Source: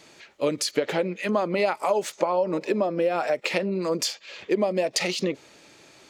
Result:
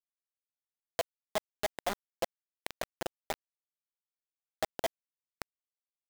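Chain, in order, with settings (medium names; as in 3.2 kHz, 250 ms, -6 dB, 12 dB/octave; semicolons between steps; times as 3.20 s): cycle switcher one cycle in 3, muted; compression 1.5:1, threshold -37 dBFS, peak gain reduction 7 dB; peaking EQ 690 Hz +13 dB 0.54 oct; level held to a coarse grid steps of 22 dB; comb of notches 150 Hz; on a send: shuffle delay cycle 1052 ms, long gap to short 3:1, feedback 32%, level -6 dB; on the sum: hysteresis with a dead band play -33.5 dBFS; peaking EQ 160 Hz -9.5 dB 0.4 oct; bit crusher 4-bit; tape noise reduction on one side only encoder only; trim -7 dB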